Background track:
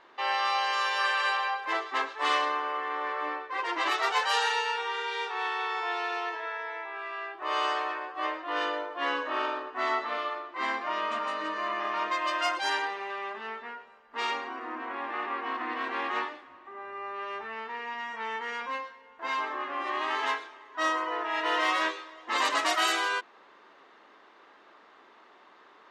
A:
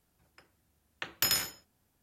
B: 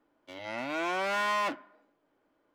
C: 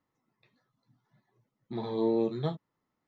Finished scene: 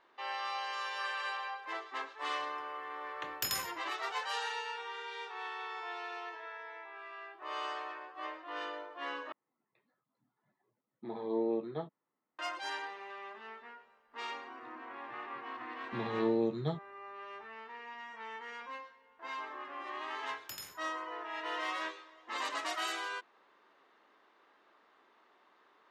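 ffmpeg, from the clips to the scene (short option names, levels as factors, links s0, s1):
-filter_complex "[1:a]asplit=2[s0][s1];[3:a]asplit=2[s2][s3];[0:a]volume=0.299[s4];[s2]highpass=260,lowpass=2300[s5];[s4]asplit=2[s6][s7];[s6]atrim=end=9.324[s8];[s5]atrim=end=3.07,asetpts=PTS-STARTPTS,volume=0.631[s9];[s7]atrim=start=12.386[s10];[s0]atrim=end=2.02,asetpts=PTS-STARTPTS,volume=0.447,afade=t=in:d=0.004:c=hsin,afade=t=out:st=2.016:d=0.004:c=hsin,adelay=2200[s11];[s3]atrim=end=3.07,asetpts=PTS-STARTPTS,volume=0.708,afade=t=in:d=0.004:c=hsin,afade=t=out:st=3.066:d=0.004:c=hsin,adelay=14220[s12];[s1]atrim=end=2.02,asetpts=PTS-STARTPTS,volume=0.133,afade=t=in:d=0.004:c=hsin,afade=t=out:st=2.016:d=0.004:c=hsin,adelay=19270[s13];[s8][s9]acrossfade=d=0.004:c1=hsin:c2=hsin[s14];[s14][s10]acrossfade=d=0.004:c1=hsin:c2=hsin[s15];[s15][s11][s12][s13]amix=inputs=4:normalize=0"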